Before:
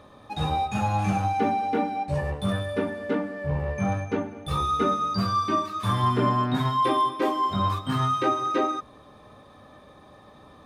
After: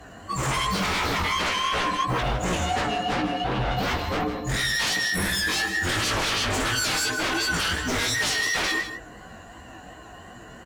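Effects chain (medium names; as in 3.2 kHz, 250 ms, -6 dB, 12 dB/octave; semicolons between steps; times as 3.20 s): frequency axis rescaled in octaves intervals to 125%; sine folder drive 16 dB, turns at -13 dBFS; chorus 2.8 Hz, delay 16 ms, depth 6.7 ms; delay 157 ms -10 dB; trim -6.5 dB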